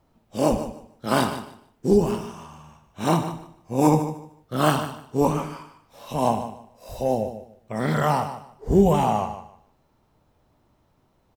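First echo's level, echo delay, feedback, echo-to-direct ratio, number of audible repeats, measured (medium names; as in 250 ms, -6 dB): -11.5 dB, 150 ms, 21%, -11.5 dB, 2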